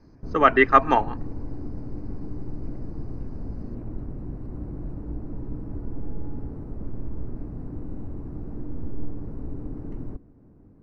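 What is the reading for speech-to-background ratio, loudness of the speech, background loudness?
18.0 dB, -19.0 LUFS, -37.0 LUFS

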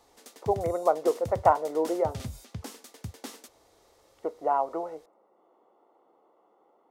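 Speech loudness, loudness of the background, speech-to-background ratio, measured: -28.0 LUFS, -42.0 LUFS, 14.0 dB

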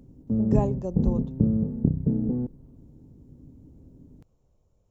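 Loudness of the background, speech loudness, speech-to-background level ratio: -26.5 LUFS, -31.0 LUFS, -4.5 dB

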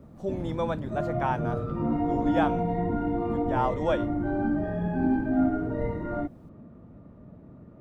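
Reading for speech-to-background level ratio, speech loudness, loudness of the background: -2.5 dB, -31.5 LUFS, -29.0 LUFS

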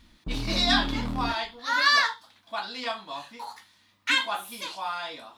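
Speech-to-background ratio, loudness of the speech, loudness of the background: 6.5 dB, -26.5 LUFS, -33.0 LUFS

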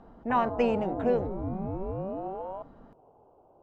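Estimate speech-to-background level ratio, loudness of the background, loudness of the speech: 7.0 dB, -35.5 LUFS, -28.5 LUFS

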